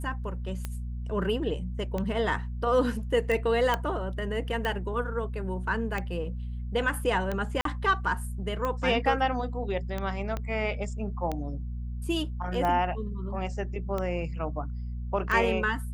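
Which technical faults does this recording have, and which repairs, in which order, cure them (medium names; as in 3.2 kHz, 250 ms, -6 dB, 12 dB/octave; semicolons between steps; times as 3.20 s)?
hum 60 Hz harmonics 4 -34 dBFS
tick 45 rpm -18 dBFS
3.74 s: pop -13 dBFS
7.61–7.65 s: dropout 43 ms
10.37 s: pop -19 dBFS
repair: de-click; de-hum 60 Hz, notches 4; interpolate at 7.61 s, 43 ms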